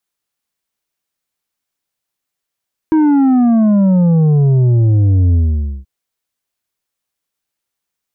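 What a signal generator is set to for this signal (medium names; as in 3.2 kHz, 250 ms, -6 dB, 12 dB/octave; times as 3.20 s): sub drop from 320 Hz, over 2.93 s, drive 6.5 dB, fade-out 0.51 s, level -8.5 dB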